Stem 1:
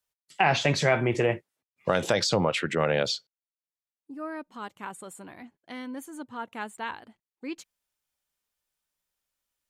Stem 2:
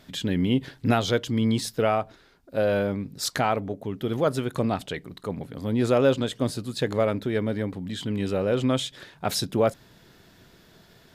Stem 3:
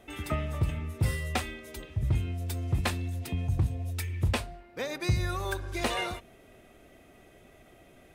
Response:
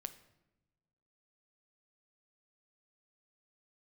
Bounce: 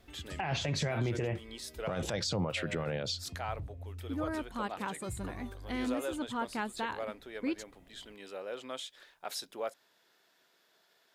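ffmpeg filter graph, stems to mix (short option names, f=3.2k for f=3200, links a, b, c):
-filter_complex "[0:a]volume=0.5dB[a];[1:a]highpass=570,volume=-11.5dB[b];[2:a]acompressor=threshold=-42dB:ratio=2.5,volume=-11.5dB[c];[a][c]amix=inputs=2:normalize=0,lowshelf=f=170:g=11.5,alimiter=limit=-13.5dB:level=0:latency=1:release=38,volume=0dB[d];[b][d]amix=inputs=2:normalize=0,alimiter=limit=-24dB:level=0:latency=1:release=249"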